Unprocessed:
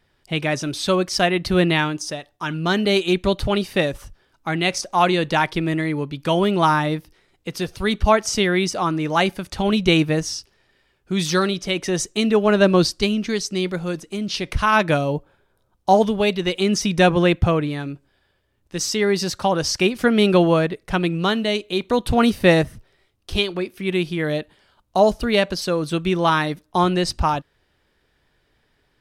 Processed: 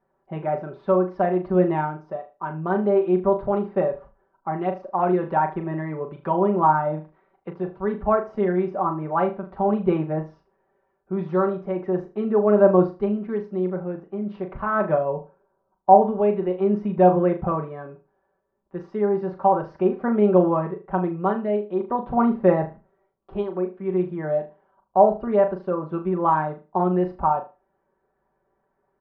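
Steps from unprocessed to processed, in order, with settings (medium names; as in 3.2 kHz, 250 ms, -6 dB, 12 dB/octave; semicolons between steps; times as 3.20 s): low-pass 1 kHz 24 dB/octave; tilt EQ +4 dB/octave; comb 5.2 ms, depth 78%; flutter echo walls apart 6.6 m, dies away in 0.29 s; 5.07–7.53 s: tape noise reduction on one side only encoder only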